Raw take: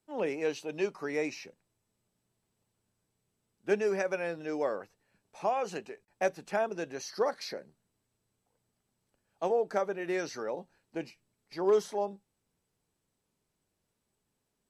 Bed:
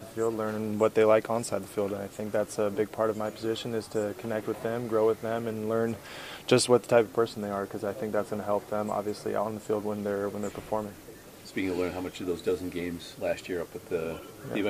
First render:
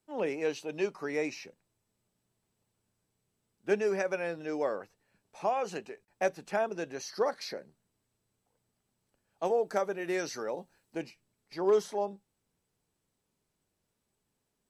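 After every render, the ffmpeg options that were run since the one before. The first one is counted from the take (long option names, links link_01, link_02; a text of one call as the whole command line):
ffmpeg -i in.wav -filter_complex "[0:a]asettb=1/sr,asplit=3[link_01][link_02][link_03];[link_01]atrim=end=9.454[link_04];[link_02]atrim=start=9.45:end=11.02,asetpts=PTS-STARTPTS,afade=type=in:duration=0.004:curve=qsin,afade=type=out:start_time=1.566:duration=0.004:curve=qsin,highshelf=frequency=7000:gain=9.5[link_05];[link_03]atrim=start=11.016[link_06];[link_04][link_05]acrossfade=duration=0.004:curve1=hsin:curve2=qsin[link_07];[link_07][link_06]acrossfade=duration=0.004:curve1=qsin:curve2=hsin" out.wav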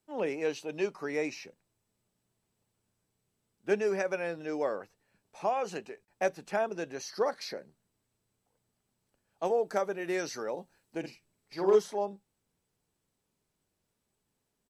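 ffmpeg -i in.wav -filter_complex "[0:a]asplit=3[link_01][link_02][link_03];[link_01]afade=type=out:start_time=11.03:duration=0.02[link_04];[link_02]asplit=2[link_05][link_06];[link_06]adelay=47,volume=-4dB[link_07];[link_05][link_07]amix=inputs=2:normalize=0,afade=type=in:start_time=11.03:duration=0.02,afade=type=out:start_time=11.77:duration=0.02[link_08];[link_03]afade=type=in:start_time=11.77:duration=0.02[link_09];[link_04][link_08][link_09]amix=inputs=3:normalize=0" out.wav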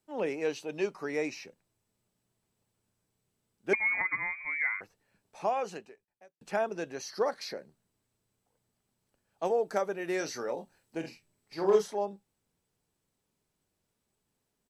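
ffmpeg -i in.wav -filter_complex "[0:a]asettb=1/sr,asplit=3[link_01][link_02][link_03];[link_01]atrim=end=3.734[link_04];[link_02]atrim=start=3.73:end=4.81,asetpts=PTS-STARTPTS,afade=type=in:duration=0.004:curve=qsin,afade=type=out:start_time=1.076:duration=0.004:curve=qsin,lowpass=frequency=2200:width_type=q:width=0.5098,lowpass=frequency=2200:width_type=q:width=0.6013,lowpass=frequency=2200:width_type=q:width=0.9,lowpass=frequency=2200:width_type=q:width=2.563,afreqshift=-2600[link_05];[link_03]atrim=start=4.806[link_06];[link_04][link_05]acrossfade=duration=0.004:curve1=hsin:curve2=qsin[link_07];[link_07][link_06]acrossfade=duration=0.004:curve1=qsin:curve2=hsin,asettb=1/sr,asplit=3[link_08][link_09][link_10];[link_08]atrim=end=10.184[link_11];[link_09]atrim=start=10.18:end=11.87,asetpts=PTS-STARTPTS,afade=type=in:duration=0.004:curve=qsin,afade=type=out:start_time=1.686:duration=0.004:curve=qsin,asplit=2[link_12][link_13];[link_13]adelay=25,volume=-7.5dB[link_14];[link_12][link_14]amix=inputs=2:normalize=0,atrim=end_sample=74529[link_15];[link_10]atrim=start=11.866[link_16];[link_11][link_15]acrossfade=duration=0.004:curve1=hsin:curve2=qsin[link_17];[link_17][link_16]acrossfade=duration=0.004:curve1=qsin:curve2=hsin,asplit=2[link_18][link_19];[link_18]atrim=end=6.41,asetpts=PTS-STARTPTS,afade=type=out:start_time=5.59:duration=0.82:curve=qua[link_20];[link_19]atrim=start=6.41,asetpts=PTS-STARTPTS,afade=type=in:duration=0.004:curve=hsin[link_21];[link_20][link_21]concat=n=2:v=0:a=1" out.wav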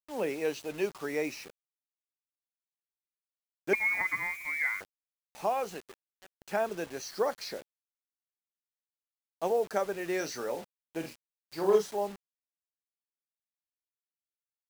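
ffmpeg -i in.wav -af "acrusher=bits=7:mix=0:aa=0.000001" out.wav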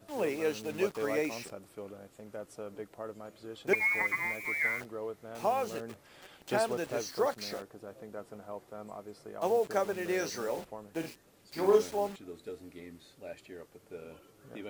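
ffmpeg -i in.wav -i bed.wav -filter_complex "[1:a]volume=-14.5dB[link_01];[0:a][link_01]amix=inputs=2:normalize=0" out.wav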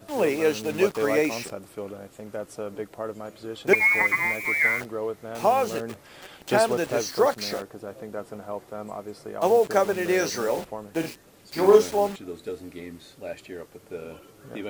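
ffmpeg -i in.wav -af "volume=9dB" out.wav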